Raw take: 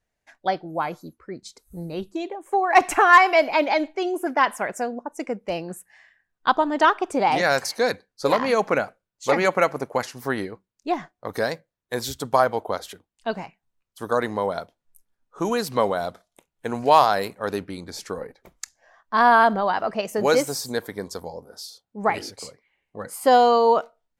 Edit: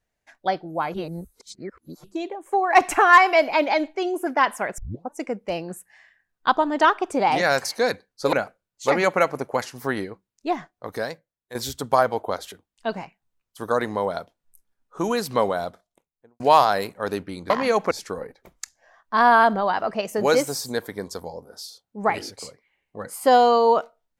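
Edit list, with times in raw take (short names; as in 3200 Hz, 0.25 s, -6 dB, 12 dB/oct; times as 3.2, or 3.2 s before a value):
0.94–2.04 reverse
4.78 tape start 0.33 s
8.33–8.74 move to 17.91
10.91–11.96 fade out, to -11.5 dB
15.9–16.81 studio fade out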